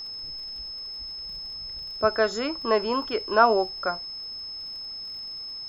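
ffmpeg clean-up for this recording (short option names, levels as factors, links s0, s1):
-af "adeclick=t=4,bandreject=f=5200:w=30"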